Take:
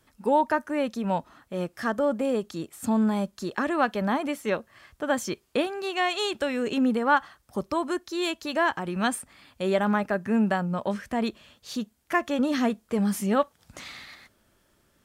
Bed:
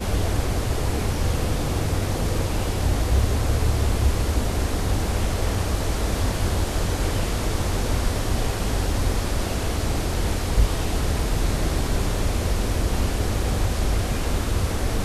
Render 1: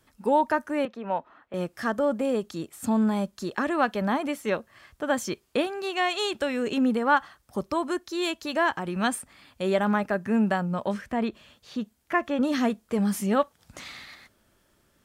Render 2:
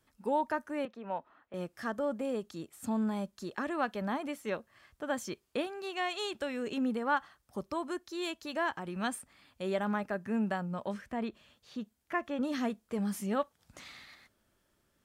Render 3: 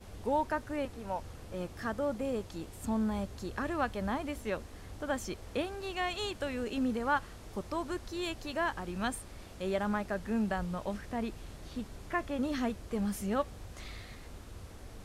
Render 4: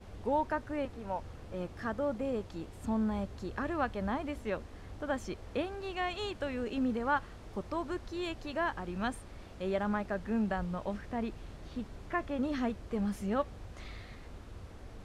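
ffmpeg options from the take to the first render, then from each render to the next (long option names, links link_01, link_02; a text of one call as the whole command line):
ffmpeg -i in.wav -filter_complex "[0:a]asettb=1/sr,asplit=3[link_01][link_02][link_03];[link_01]atrim=end=0.854[link_04];[link_02]atrim=start=0.85:end=1.54,asetpts=PTS-STARTPTS,afade=type=in:duration=0.004:curve=qsin,afade=type=out:start_time=0.686:duration=0.004:curve=qsin,acrossover=split=310 3000:gain=0.2 1 0.0631[link_05][link_06][link_07];[link_05][link_06][link_07]amix=inputs=3:normalize=0[link_08];[link_03]atrim=start=1.536[link_09];[link_04][link_08]acrossfade=duration=0.004:curve1=hsin:curve2=qsin[link_10];[link_10][link_09]acrossfade=duration=0.004:curve1=qsin:curve2=hsin,asettb=1/sr,asplit=3[link_11][link_12][link_13];[link_11]atrim=end=11.014[link_14];[link_12]atrim=start=11.01:end=12.42,asetpts=PTS-STARTPTS,afade=type=in:duration=0.004:curve=qsin,afade=type=out:start_time=1.406:duration=0.004:curve=qsin,acrossover=split=3300[link_15][link_16];[link_16]acompressor=threshold=-55dB:ratio=4:attack=1:release=60[link_17];[link_15][link_17]amix=inputs=2:normalize=0[link_18];[link_13]atrim=start=12.416[link_19];[link_14][link_18]acrossfade=duration=0.004:curve1=hsin:curve2=qsin[link_20];[link_20][link_19]acrossfade=duration=0.004:curve1=qsin:curve2=hsin" out.wav
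ffmpeg -i in.wav -af "volume=-8.5dB" out.wav
ffmpeg -i in.wav -i bed.wav -filter_complex "[1:a]volume=-24.5dB[link_01];[0:a][link_01]amix=inputs=2:normalize=0" out.wav
ffmpeg -i in.wav -af "aemphasis=mode=reproduction:type=50kf" out.wav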